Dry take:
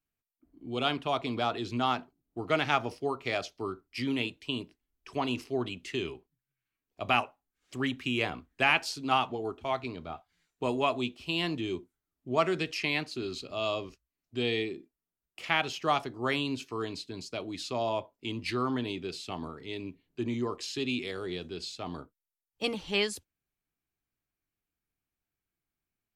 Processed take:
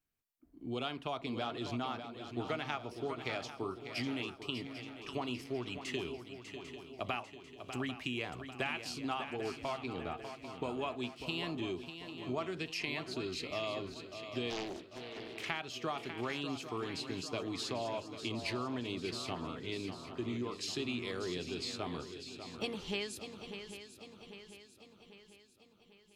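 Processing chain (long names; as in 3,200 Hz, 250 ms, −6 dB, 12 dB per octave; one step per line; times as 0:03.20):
downward compressor 6 to 1, threshold −35 dBFS, peak gain reduction 15 dB
on a send: feedback echo with a long and a short gap by turns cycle 795 ms, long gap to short 3 to 1, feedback 50%, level −9.5 dB
0:14.50–0:15.46: on the sum: highs frequency-modulated by the lows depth 0.73 ms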